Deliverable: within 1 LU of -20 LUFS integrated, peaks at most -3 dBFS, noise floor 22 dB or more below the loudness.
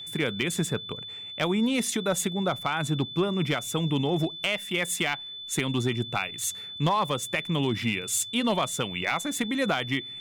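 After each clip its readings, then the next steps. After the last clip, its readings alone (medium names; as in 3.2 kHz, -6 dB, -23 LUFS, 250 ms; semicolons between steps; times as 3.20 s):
clipped samples 0.2%; clipping level -17.0 dBFS; steady tone 3.5 kHz; tone level -37 dBFS; loudness -27.5 LUFS; peak level -17.0 dBFS; loudness target -20.0 LUFS
-> clip repair -17 dBFS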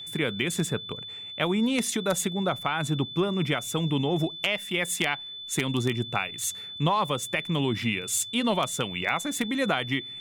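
clipped samples 0.0%; steady tone 3.5 kHz; tone level -37 dBFS
-> band-stop 3.5 kHz, Q 30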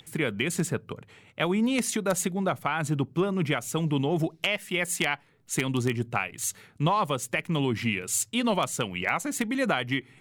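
steady tone not found; loudness -27.5 LUFS; peak level -8.0 dBFS; loudness target -20.0 LUFS
-> trim +7.5 dB; peak limiter -3 dBFS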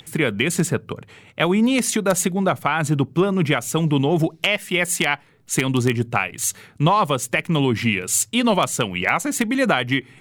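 loudness -20.5 LUFS; peak level -3.0 dBFS; noise floor -51 dBFS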